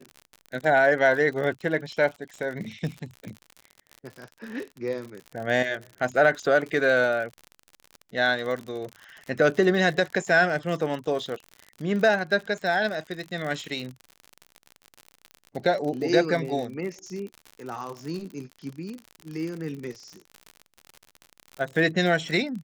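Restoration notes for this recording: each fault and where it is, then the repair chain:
surface crackle 59 per second −32 dBFS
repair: click removal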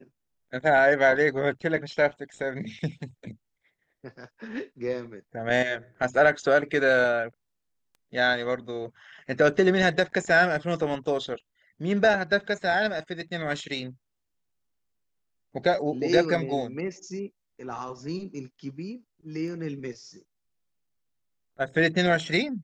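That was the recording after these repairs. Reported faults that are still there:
none of them is left

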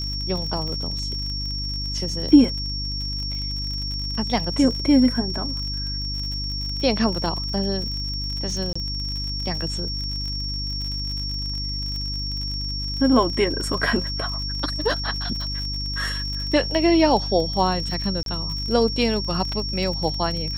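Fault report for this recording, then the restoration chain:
surface crackle 49 per second −29 dBFS
mains hum 50 Hz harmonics 6 −30 dBFS
whistle 5,500 Hz −28 dBFS
0:08.73–0:08.76: drop-out 25 ms
0:18.23–0:18.26: drop-out 32 ms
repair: click removal
hum removal 50 Hz, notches 6
notch filter 5,500 Hz, Q 30
repair the gap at 0:08.73, 25 ms
repair the gap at 0:18.23, 32 ms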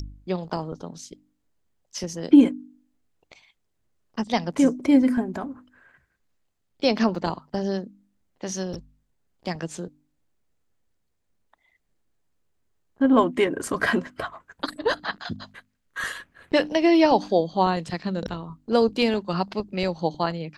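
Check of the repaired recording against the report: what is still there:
none of them is left

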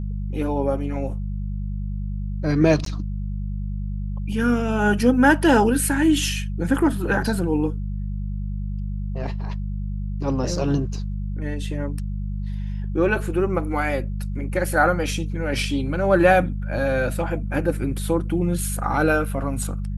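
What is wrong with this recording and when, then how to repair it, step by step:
mains hum 50 Hz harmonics 4 −27 dBFS
0:02.85–0:02.86: drop-out 13 ms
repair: hum removal 50 Hz, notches 4
repair the gap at 0:02.85, 13 ms

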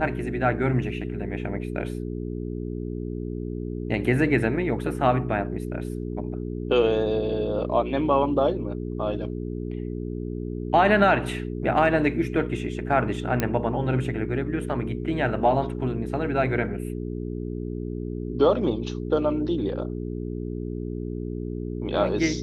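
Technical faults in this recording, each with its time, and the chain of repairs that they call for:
mains hum 60 Hz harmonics 7 −31 dBFS
0:13.40: click −9 dBFS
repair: click removal
hum removal 60 Hz, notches 7

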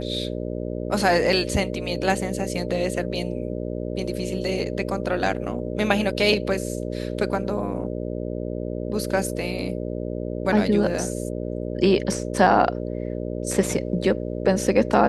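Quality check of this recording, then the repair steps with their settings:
mains buzz 60 Hz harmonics 10 −29 dBFS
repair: hum removal 60 Hz, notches 10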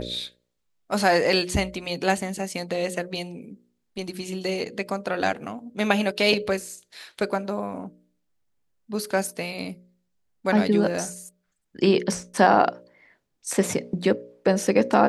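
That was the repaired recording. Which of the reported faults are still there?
none of them is left

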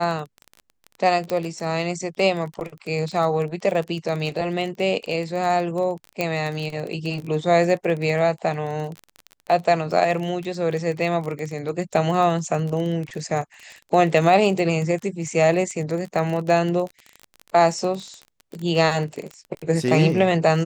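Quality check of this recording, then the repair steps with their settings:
surface crackle 21 per second −27 dBFS
0:01.30: click −12 dBFS
0:06.21: click −9 dBFS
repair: click removal

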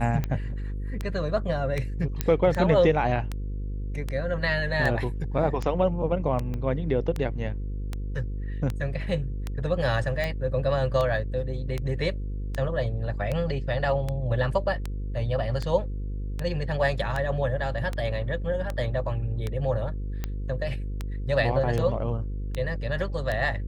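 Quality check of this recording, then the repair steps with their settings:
mains buzz 50 Hz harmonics 10 −31 dBFS
scratch tick 78 rpm −16 dBFS
0:02.21: click −10 dBFS
0:06.54: click −22 dBFS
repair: click removal
hum removal 50 Hz, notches 10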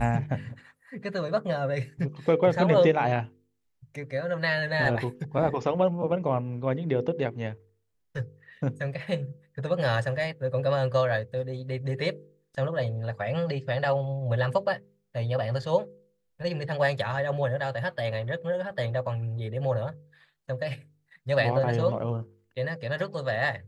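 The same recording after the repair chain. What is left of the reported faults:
0:06.54: click

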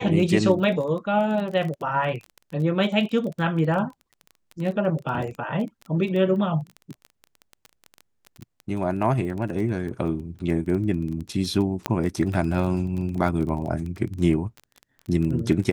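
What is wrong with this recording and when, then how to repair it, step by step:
surface crackle 21 per second −30 dBFS
0:11.86: click −8 dBFS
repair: click removal

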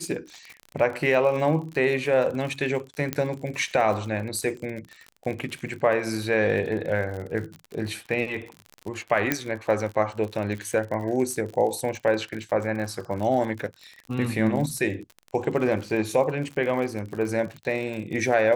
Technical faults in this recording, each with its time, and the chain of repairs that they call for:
surface crackle 54 per second −32 dBFS
0:03.13: click −10 dBFS
0:09.32: click −6 dBFS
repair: click removal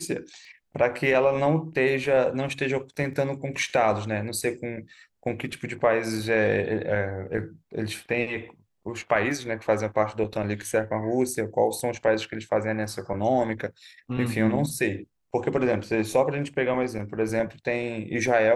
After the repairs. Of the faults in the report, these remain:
0:03.13: click
0:09.32: click

